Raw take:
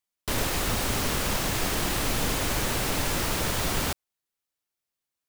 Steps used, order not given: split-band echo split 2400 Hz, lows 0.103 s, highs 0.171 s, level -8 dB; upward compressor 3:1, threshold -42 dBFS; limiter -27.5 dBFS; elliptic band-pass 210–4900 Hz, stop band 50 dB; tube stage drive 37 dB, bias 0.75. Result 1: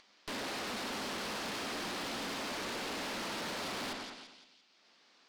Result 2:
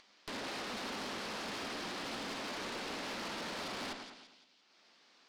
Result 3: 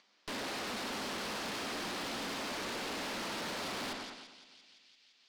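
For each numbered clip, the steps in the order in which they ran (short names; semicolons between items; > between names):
elliptic band-pass > upward compressor > split-band echo > tube stage > limiter; elliptic band-pass > limiter > upward compressor > split-band echo > tube stage; split-band echo > upward compressor > elliptic band-pass > tube stage > limiter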